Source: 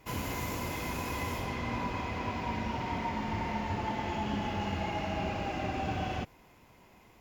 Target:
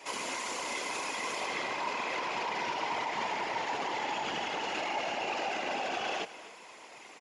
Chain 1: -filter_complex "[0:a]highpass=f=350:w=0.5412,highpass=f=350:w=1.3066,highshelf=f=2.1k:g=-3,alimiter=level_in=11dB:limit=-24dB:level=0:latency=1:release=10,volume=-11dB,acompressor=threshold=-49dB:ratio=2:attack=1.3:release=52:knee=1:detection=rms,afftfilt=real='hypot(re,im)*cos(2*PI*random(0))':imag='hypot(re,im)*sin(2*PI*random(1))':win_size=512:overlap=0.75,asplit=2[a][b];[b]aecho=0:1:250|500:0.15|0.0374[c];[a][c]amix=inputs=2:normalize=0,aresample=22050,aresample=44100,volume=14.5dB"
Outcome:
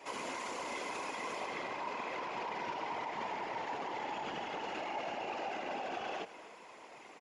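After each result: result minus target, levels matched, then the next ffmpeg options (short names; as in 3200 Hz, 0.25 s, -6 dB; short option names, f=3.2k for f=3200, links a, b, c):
compressor: peak gain reduction +6.5 dB; 4000 Hz band -3.5 dB
-filter_complex "[0:a]highpass=f=350:w=0.5412,highpass=f=350:w=1.3066,highshelf=f=2.1k:g=-3,alimiter=level_in=11dB:limit=-24dB:level=0:latency=1:release=10,volume=-11dB,afftfilt=real='hypot(re,im)*cos(2*PI*random(0))':imag='hypot(re,im)*sin(2*PI*random(1))':win_size=512:overlap=0.75,asplit=2[a][b];[b]aecho=0:1:250|500:0.15|0.0374[c];[a][c]amix=inputs=2:normalize=0,aresample=22050,aresample=44100,volume=14.5dB"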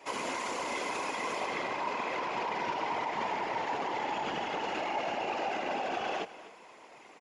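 4000 Hz band -3.5 dB
-filter_complex "[0:a]highpass=f=350:w=0.5412,highpass=f=350:w=1.3066,highshelf=f=2.1k:g=6.5,alimiter=level_in=11dB:limit=-24dB:level=0:latency=1:release=10,volume=-11dB,afftfilt=real='hypot(re,im)*cos(2*PI*random(0))':imag='hypot(re,im)*sin(2*PI*random(1))':win_size=512:overlap=0.75,asplit=2[a][b];[b]aecho=0:1:250|500:0.15|0.0374[c];[a][c]amix=inputs=2:normalize=0,aresample=22050,aresample=44100,volume=14.5dB"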